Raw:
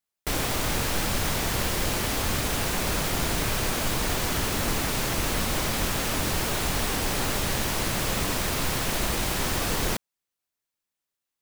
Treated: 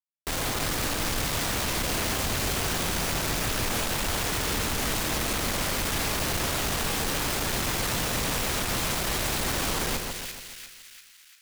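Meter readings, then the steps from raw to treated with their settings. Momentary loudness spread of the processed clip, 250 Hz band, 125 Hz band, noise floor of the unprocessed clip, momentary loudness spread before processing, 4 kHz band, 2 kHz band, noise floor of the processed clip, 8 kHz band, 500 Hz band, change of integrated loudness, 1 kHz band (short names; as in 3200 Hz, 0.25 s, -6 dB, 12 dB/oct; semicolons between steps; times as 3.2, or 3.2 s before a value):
4 LU, -2.0 dB, -2.5 dB, under -85 dBFS, 0 LU, +0.5 dB, 0.0 dB, -53 dBFS, 0.0 dB, -1.5 dB, -0.5 dB, -1.0 dB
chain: wow and flutter 76 cents; Schmitt trigger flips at -40 dBFS; split-band echo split 1700 Hz, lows 0.142 s, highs 0.346 s, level -5 dB; gain -2 dB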